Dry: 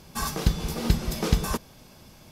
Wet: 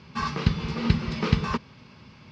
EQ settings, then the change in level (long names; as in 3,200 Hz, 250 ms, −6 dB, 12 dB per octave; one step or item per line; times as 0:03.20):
high-frequency loss of the air 56 metres
loudspeaker in its box 110–4,200 Hz, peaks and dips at 180 Hz −4 dB, 320 Hz −9 dB, 730 Hz −9 dB, 1,600 Hz −4 dB, 3,500 Hz −7 dB
parametric band 570 Hz −8.5 dB 0.89 octaves
+7.0 dB